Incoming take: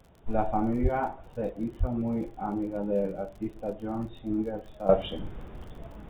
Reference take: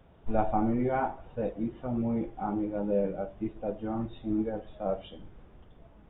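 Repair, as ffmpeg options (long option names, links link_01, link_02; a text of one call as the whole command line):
ffmpeg -i in.wav -filter_complex "[0:a]adeclick=threshold=4,asplit=3[link_01][link_02][link_03];[link_01]afade=type=out:start_time=0.82:duration=0.02[link_04];[link_02]highpass=frequency=140:width=0.5412,highpass=frequency=140:width=1.3066,afade=type=in:start_time=0.82:duration=0.02,afade=type=out:start_time=0.94:duration=0.02[link_05];[link_03]afade=type=in:start_time=0.94:duration=0.02[link_06];[link_04][link_05][link_06]amix=inputs=3:normalize=0,asplit=3[link_07][link_08][link_09];[link_07]afade=type=out:start_time=1.79:duration=0.02[link_10];[link_08]highpass=frequency=140:width=0.5412,highpass=frequency=140:width=1.3066,afade=type=in:start_time=1.79:duration=0.02,afade=type=out:start_time=1.91:duration=0.02[link_11];[link_09]afade=type=in:start_time=1.91:duration=0.02[link_12];[link_10][link_11][link_12]amix=inputs=3:normalize=0,asetnsamples=nb_out_samples=441:pad=0,asendcmd='4.89 volume volume -11dB',volume=0dB" out.wav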